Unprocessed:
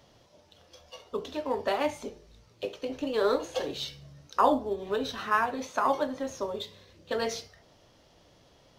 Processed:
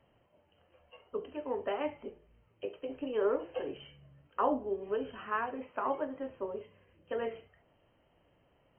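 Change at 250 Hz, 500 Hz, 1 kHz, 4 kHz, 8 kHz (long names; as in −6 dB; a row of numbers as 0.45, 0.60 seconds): −5.5 dB, −4.5 dB, −8.0 dB, −15.0 dB, below −35 dB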